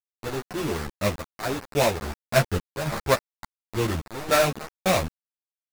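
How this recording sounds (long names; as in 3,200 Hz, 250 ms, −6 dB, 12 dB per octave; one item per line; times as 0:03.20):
aliases and images of a low sample rate 3,100 Hz, jitter 20%
sample-and-hold tremolo 3.5 Hz, depth 90%
a quantiser's noise floor 6 bits, dither none
a shimmering, thickened sound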